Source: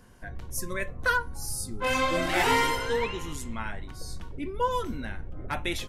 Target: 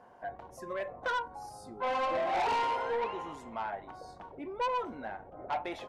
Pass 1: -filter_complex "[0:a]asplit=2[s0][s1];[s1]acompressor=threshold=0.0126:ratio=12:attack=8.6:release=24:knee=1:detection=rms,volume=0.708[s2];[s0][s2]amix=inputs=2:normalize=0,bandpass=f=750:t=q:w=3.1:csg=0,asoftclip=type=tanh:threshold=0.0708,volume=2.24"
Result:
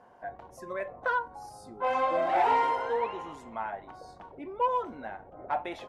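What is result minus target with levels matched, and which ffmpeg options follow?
saturation: distortion -11 dB
-filter_complex "[0:a]asplit=2[s0][s1];[s1]acompressor=threshold=0.0126:ratio=12:attack=8.6:release=24:knee=1:detection=rms,volume=0.708[s2];[s0][s2]amix=inputs=2:normalize=0,bandpass=f=750:t=q:w=3.1:csg=0,asoftclip=type=tanh:threshold=0.02,volume=2.24"

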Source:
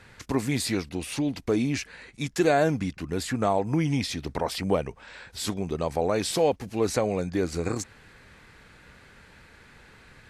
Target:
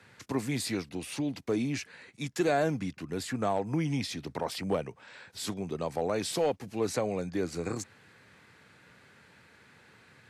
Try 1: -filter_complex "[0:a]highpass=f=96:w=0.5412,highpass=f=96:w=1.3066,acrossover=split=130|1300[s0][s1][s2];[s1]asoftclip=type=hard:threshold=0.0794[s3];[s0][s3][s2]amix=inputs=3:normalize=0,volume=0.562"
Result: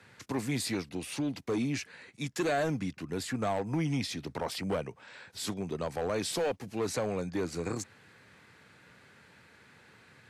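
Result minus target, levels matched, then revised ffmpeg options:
hard clipper: distortion +13 dB
-filter_complex "[0:a]highpass=f=96:w=0.5412,highpass=f=96:w=1.3066,acrossover=split=130|1300[s0][s1][s2];[s1]asoftclip=type=hard:threshold=0.168[s3];[s0][s3][s2]amix=inputs=3:normalize=0,volume=0.562"

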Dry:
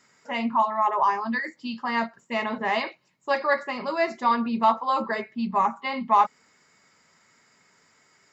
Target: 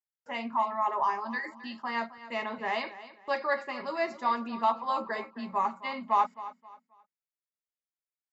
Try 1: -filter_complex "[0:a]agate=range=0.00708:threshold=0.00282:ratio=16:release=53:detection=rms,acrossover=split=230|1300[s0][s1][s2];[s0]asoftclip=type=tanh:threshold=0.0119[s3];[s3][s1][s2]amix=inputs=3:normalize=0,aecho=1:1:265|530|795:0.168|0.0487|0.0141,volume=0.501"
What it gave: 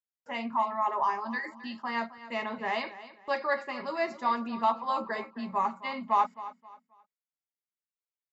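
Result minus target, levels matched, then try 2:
saturation: distortion -5 dB
-filter_complex "[0:a]agate=range=0.00708:threshold=0.00282:ratio=16:release=53:detection=rms,acrossover=split=230|1300[s0][s1][s2];[s0]asoftclip=type=tanh:threshold=0.00447[s3];[s3][s1][s2]amix=inputs=3:normalize=0,aecho=1:1:265|530|795:0.168|0.0487|0.0141,volume=0.501"

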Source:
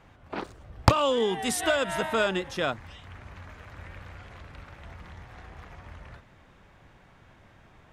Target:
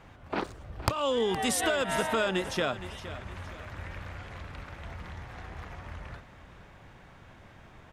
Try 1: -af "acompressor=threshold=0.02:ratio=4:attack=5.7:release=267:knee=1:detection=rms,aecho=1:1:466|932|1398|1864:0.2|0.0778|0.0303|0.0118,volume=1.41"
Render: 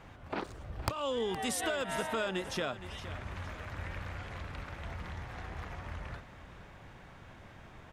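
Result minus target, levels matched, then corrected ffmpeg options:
compression: peak gain reduction +6 dB
-af "acompressor=threshold=0.0501:ratio=4:attack=5.7:release=267:knee=1:detection=rms,aecho=1:1:466|932|1398|1864:0.2|0.0778|0.0303|0.0118,volume=1.41"

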